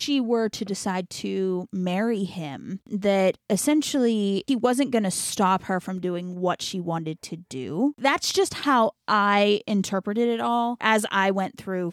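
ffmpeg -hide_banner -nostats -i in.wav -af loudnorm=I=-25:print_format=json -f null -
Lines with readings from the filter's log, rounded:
"input_i" : "-23.9",
"input_tp" : "-6.6",
"input_lra" : "3.5",
"input_thresh" : "-34.0",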